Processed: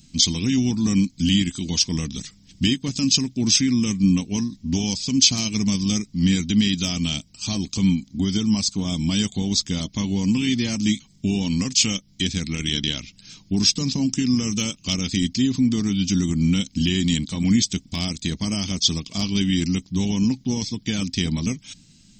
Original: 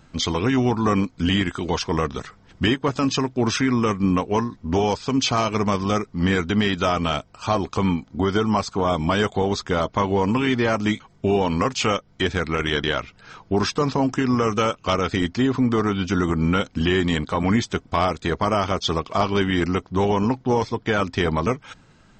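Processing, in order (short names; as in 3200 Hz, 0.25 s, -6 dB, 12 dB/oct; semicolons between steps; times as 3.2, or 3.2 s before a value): EQ curve 130 Hz 0 dB, 190 Hz +6 dB, 290 Hz +1 dB, 420 Hz -14 dB, 1400 Hz -19 dB, 2200 Hz -2 dB, 5100 Hz +13 dB; gain -1.5 dB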